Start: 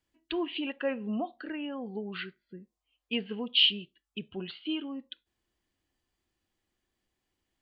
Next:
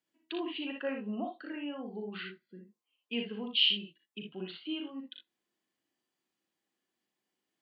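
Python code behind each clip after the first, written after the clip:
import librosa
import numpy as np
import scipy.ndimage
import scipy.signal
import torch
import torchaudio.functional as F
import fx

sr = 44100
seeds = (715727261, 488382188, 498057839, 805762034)

y = scipy.signal.sosfilt(scipy.signal.butter(4, 160.0, 'highpass', fs=sr, output='sos'), x)
y = fx.room_early_taps(y, sr, ms=(38, 59, 78), db=(-7.0, -5.0, -11.0))
y = F.gain(torch.from_numpy(y), -5.0).numpy()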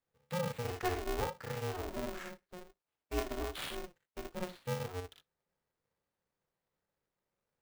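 y = scipy.ndimage.median_filter(x, 15, mode='constant')
y = y * np.sign(np.sin(2.0 * np.pi * 180.0 * np.arange(len(y)) / sr))
y = F.gain(torch.from_numpy(y), 1.0).numpy()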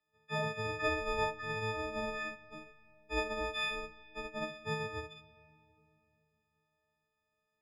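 y = fx.freq_snap(x, sr, grid_st=6)
y = scipy.signal.sosfilt(scipy.signal.cheby1(2, 1.0, 2700.0, 'lowpass', fs=sr, output='sos'), y)
y = fx.rev_freeverb(y, sr, rt60_s=3.3, hf_ratio=0.55, predelay_ms=20, drr_db=17.0)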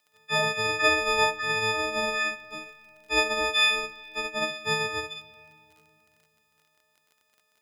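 y = fx.high_shelf(x, sr, hz=2300.0, db=10.5)
y = fx.dmg_crackle(y, sr, seeds[0], per_s=37.0, level_db=-54.0)
y = fx.low_shelf(y, sr, hz=160.0, db=-11.5)
y = F.gain(torch.from_numpy(y), 8.5).numpy()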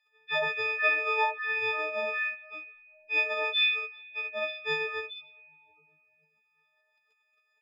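y = fx.spec_expand(x, sr, power=2.9)
y = F.gain(torch.from_numpy(y), -3.0).numpy()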